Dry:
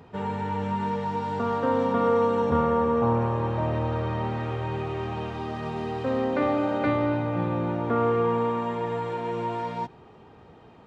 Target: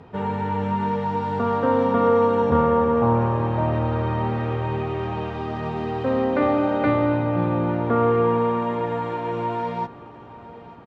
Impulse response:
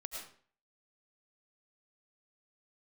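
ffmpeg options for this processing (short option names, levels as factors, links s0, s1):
-af "aemphasis=mode=reproduction:type=50fm,aecho=1:1:887|1774|2661|3548:0.119|0.0594|0.0297|0.0149,volume=1.58"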